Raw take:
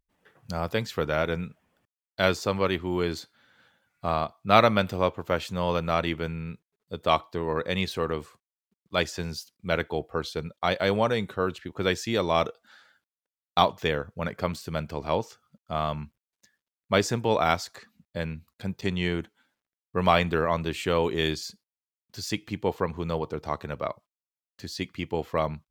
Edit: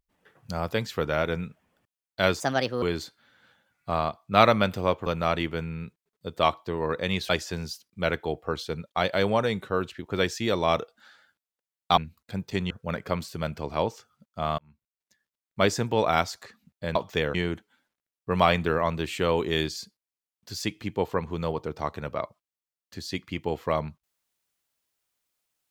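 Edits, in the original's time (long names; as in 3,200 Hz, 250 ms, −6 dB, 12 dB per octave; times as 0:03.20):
0:02.40–0:02.98: play speed 137%
0:05.22–0:05.73: remove
0:07.96–0:08.96: remove
0:13.64–0:14.03: swap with 0:18.28–0:19.01
0:15.91–0:16.96: fade in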